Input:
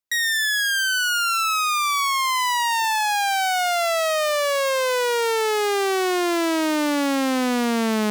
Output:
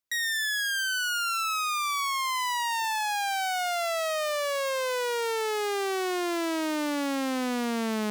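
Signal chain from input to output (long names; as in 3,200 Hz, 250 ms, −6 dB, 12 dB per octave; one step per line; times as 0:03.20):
brickwall limiter −24 dBFS, peak gain reduction 7.5 dB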